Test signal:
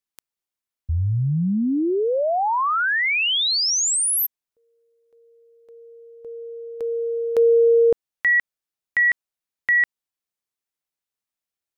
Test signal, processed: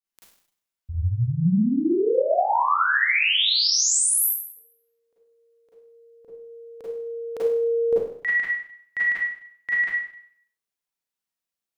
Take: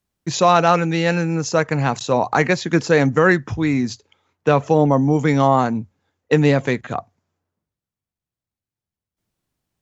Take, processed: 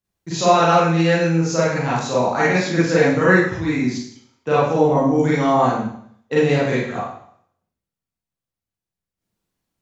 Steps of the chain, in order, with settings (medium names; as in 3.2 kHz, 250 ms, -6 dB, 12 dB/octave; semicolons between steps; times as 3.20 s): Schroeder reverb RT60 0.63 s, combs from 33 ms, DRR -8.5 dB; trim -9 dB